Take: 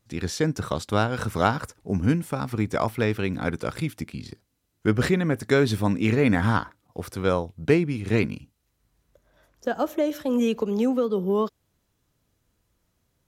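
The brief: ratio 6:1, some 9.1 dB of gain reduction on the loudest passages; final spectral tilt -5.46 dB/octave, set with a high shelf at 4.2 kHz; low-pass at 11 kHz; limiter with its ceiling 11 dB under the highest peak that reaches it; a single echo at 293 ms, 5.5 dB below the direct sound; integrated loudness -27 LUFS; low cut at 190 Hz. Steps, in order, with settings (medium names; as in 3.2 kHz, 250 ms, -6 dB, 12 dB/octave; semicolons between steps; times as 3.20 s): high-pass 190 Hz; low-pass 11 kHz; treble shelf 4.2 kHz -6 dB; compression 6:1, threshold -25 dBFS; peak limiter -23.5 dBFS; delay 293 ms -5.5 dB; trim +7 dB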